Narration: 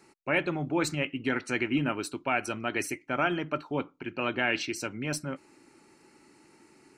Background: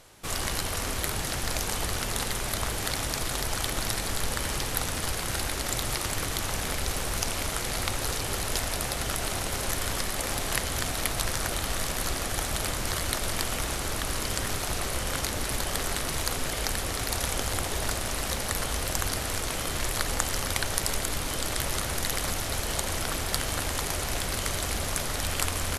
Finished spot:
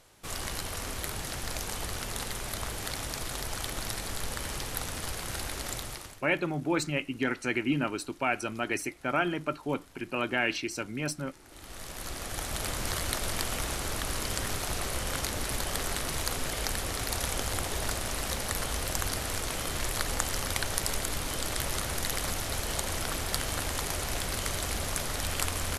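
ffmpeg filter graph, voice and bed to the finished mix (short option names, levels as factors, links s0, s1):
-filter_complex "[0:a]adelay=5950,volume=0.944[s0];[1:a]volume=9.44,afade=t=out:st=5.68:d=0.54:silence=0.0794328,afade=t=in:st=11.45:d=1.38:silence=0.0562341[s1];[s0][s1]amix=inputs=2:normalize=0"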